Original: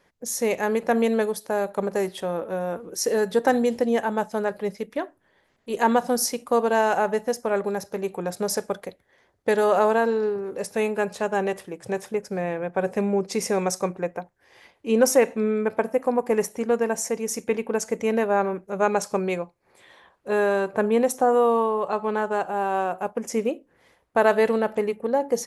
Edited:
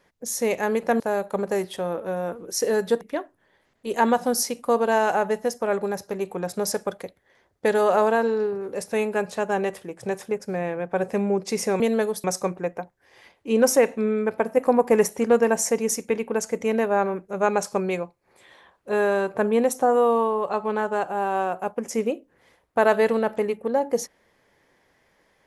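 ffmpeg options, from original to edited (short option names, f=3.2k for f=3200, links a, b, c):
-filter_complex "[0:a]asplit=7[a][b][c][d][e][f][g];[a]atrim=end=1.002[h];[b]atrim=start=1.438:end=3.452[i];[c]atrim=start=4.838:end=13.632[j];[d]atrim=start=0.998:end=1.442[k];[e]atrim=start=13.628:end=15.962[l];[f]atrim=start=15.958:end=17.342,asetpts=PTS-STARTPTS,volume=4dB[m];[g]atrim=start=17.338[n];[h][i]acrossfade=d=0.004:c1=hsin:c2=hsin[o];[o][j]acrossfade=d=0.004:c1=hsin:c2=hsin[p];[p][k]acrossfade=d=0.004:c1=hsin:c2=hsin[q];[q][l]acrossfade=d=0.004:c1=hsin:c2=hsin[r];[r][m]acrossfade=d=0.004:c1=hsin:c2=hsin[s];[s][n]acrossfade=d=0.004:c1=hsin:c2=hsin"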